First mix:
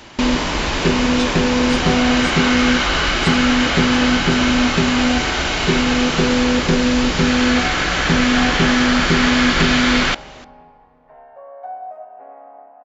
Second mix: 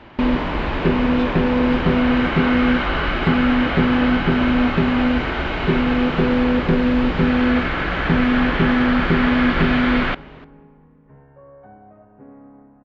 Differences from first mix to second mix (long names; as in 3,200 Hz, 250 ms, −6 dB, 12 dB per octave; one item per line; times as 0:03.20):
second sound: remove high-pass with resonance 690 Hz, resonance Q 8.6
master: add high-frequency loss of the air 480 metres